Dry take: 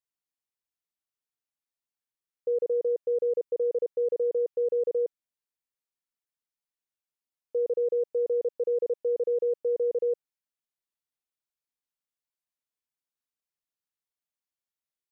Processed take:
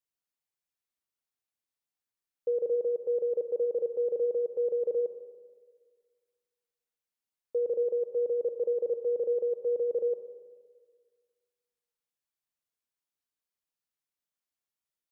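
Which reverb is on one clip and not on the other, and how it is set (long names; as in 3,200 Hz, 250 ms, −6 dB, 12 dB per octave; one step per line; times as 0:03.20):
four-comb reverb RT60 1.7 s, combs from 32 ms, DRR 8 dB
level −1 dB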